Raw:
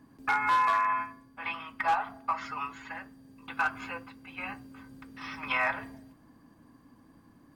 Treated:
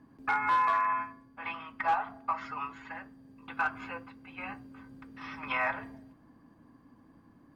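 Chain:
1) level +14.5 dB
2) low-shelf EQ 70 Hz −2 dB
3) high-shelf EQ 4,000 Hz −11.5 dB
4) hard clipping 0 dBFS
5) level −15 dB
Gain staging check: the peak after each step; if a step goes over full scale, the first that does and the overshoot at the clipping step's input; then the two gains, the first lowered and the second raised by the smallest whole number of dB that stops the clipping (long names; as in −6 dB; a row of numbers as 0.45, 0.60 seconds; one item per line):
−5.0, −5.0, −5.5, −5.5, −20.5 dBFS
no step passes full scale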